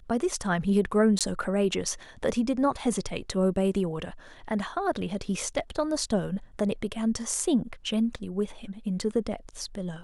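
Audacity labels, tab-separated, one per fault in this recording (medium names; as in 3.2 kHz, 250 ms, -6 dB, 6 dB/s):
1.190000	1.210000	dropout 17 ms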